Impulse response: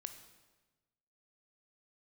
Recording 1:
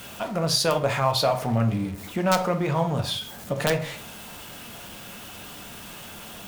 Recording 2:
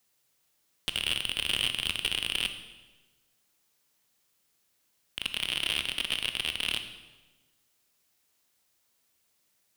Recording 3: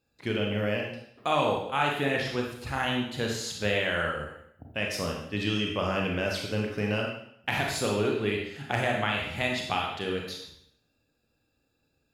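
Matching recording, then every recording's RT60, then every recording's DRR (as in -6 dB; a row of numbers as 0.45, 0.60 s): 2; 0.45, 1.2, 0.70 s; 6.0, 8.0, -0.5 dB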